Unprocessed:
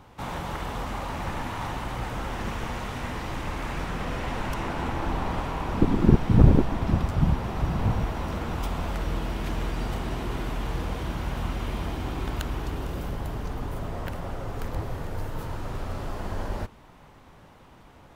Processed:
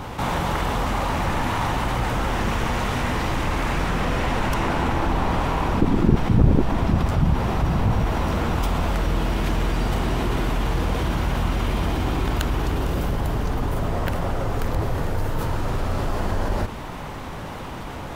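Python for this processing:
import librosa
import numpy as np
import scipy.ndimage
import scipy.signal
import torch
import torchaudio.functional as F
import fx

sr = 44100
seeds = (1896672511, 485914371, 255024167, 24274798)

y = fx.env_flatten(x, sr, amount_pct=50)
y = y * 10.0 ** (-1.5 / 20.0)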